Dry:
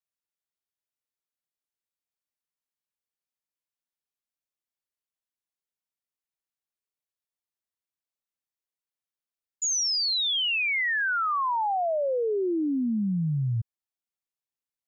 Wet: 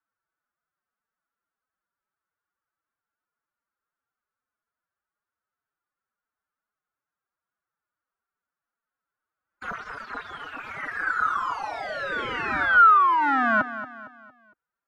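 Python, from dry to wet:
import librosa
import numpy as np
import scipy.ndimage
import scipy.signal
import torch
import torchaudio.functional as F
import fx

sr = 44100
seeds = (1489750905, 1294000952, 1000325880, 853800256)

p1 = (np.mod(10.0 ** (28.5 / 20.0) * x + 1.0, 2.0) - 1.0) / 10.0 ** (28.5 / 20.0)
p2 = p1 + fx.echo_feedback(p1, sr, ms=229, feedback_pct=41, wet_db=-13, dry=0)
p3 = fx.pitch_keep_formants(p2, sr, semitones=10.5)
p4 = fx.lowpass_res(p3, sr, hz=1400.0, q=5.0)
y = p4 * 10.0 ** (8.5 / 20.0)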